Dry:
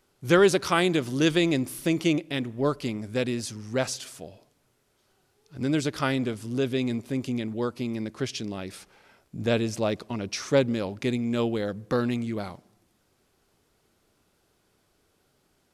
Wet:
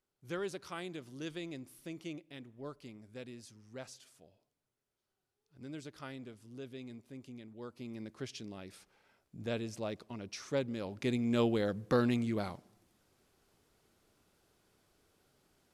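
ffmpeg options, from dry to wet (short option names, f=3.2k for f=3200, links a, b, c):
-af "volume=-3.5dB,afade=t=in:st=7.54:d=0.49:silence=0.421697,afade=t=in:st=10.71:d=0.67:silence=0.354813"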